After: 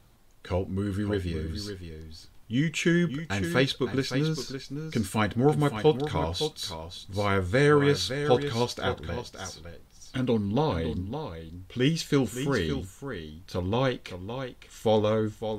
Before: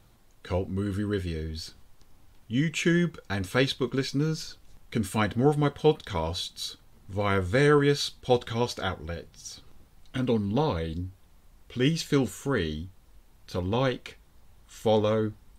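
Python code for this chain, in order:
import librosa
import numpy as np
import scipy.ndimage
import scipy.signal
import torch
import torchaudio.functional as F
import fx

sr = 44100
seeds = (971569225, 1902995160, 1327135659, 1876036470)

y = x + 10.0 ** (-9.0 / 20.0) * np.pad(x, (int(562 * sr / 1000.0), 0))[:len(x)]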